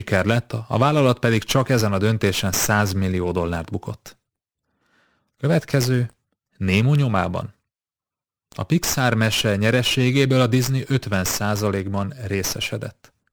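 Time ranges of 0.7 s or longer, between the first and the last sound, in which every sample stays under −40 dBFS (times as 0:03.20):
0:04.12–0:05.43
0:07.50–0:08.52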